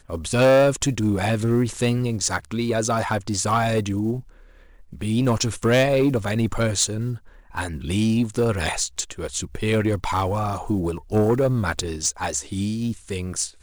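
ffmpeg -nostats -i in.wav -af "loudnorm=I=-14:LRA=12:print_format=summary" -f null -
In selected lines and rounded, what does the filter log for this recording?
Input Integrated:    -22.9 LUFS
Input True Peak:     -10.8 dBTP
Input LRA:             2.2 LU
Input Threshold:     -33.1 LUFS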